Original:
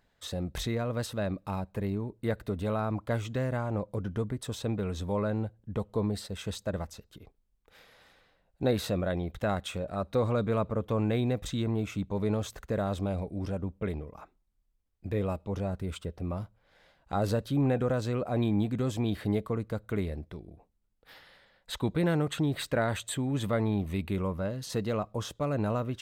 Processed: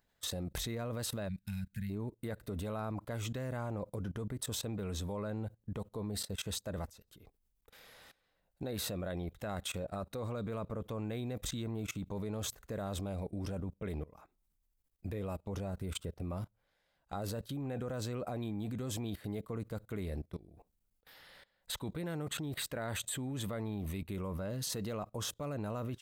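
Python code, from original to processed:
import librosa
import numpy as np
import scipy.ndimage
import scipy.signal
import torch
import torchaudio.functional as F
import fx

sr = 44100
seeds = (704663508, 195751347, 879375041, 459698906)

y = fx.spec_box(x, sr, start_s=1.28, length_s=0.62, low_hz=220.0, high_hz=1400.0, gain_db=-28)
y = fx.high_shelf(y, sr, hz=7600.0, db=11.5)
y = fx.level_steps(y, sr, step_db=20)
y = y * librosa.db_to_amplitude(2.0)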